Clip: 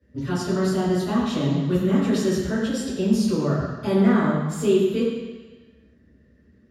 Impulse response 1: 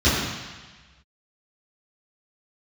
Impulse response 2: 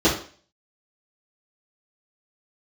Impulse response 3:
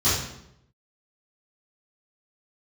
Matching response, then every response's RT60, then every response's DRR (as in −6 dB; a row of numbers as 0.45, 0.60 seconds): 1; 1.3, 0.45, 0.80 seconds; −14.0, −11.5, −15.0 decibels